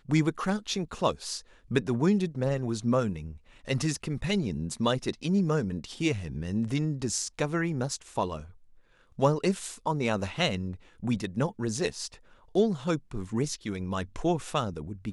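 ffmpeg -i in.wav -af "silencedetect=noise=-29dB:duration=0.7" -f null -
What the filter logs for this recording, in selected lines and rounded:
silence_start: 8.37
silence_end: 9.19 | silence_duration: 0.82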